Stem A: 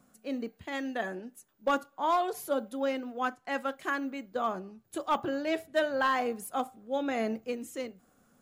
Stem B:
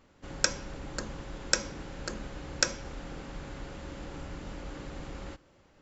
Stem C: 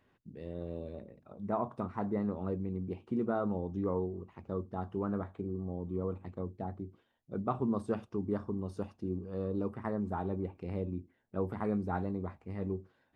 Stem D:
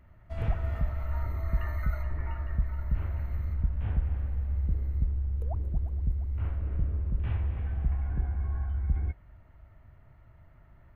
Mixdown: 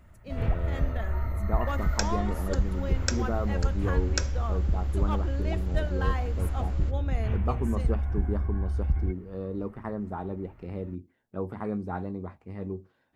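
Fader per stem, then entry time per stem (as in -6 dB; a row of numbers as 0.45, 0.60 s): -7.0, -4.0, +1.0, +2.0 dB; 0.00, 1.55, 0.00, 0.00 s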